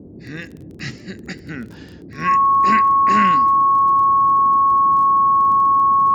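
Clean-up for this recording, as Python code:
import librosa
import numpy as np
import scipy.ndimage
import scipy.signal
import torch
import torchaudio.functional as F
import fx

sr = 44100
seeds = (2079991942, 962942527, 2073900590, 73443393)

y = fx.fix_declick_ar(x, sr, threshold=6.5)
y = fx.notch(y, sr, hz=1100.0, q=30.0)
y = fx.noise_reduce(y, sr, print_start_s=1.65, print_end_s=2.15, reduce_db=25.0)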